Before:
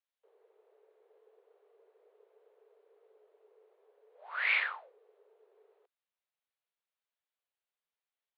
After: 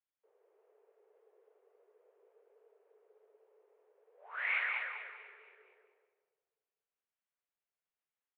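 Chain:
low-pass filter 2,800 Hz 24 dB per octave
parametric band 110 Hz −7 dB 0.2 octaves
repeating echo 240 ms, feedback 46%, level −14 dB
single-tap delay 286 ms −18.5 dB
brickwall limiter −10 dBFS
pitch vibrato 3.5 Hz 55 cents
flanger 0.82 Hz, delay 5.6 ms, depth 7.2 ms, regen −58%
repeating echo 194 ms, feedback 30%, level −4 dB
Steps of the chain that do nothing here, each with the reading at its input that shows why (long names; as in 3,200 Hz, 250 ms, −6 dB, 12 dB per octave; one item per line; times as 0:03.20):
parametric band 110 Hz: nothing at its input below 380 Hz
brickwall limiter −10 dBFS: peak of its input −18.5 dBFS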